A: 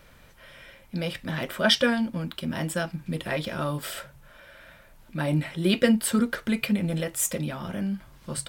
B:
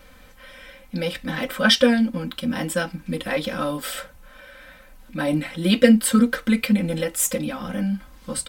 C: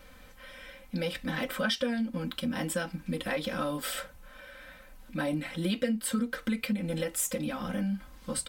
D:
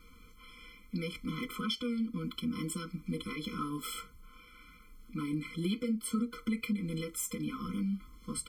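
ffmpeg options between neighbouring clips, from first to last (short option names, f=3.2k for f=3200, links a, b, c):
-af "aecho=1:1:3.9:0.91,volume=2dB"
-af "acompressor=threshold=-24dB:ratio=4,volume=-4dB"
-af "afftfilt=real='re*eq(mod(floor(b*sr/1024/500),2),0)':imag='im*eq(mod(floor(b*sr/1024/500),2),0)':win_size=1024:overlap=0.75,volume=-2.5dB"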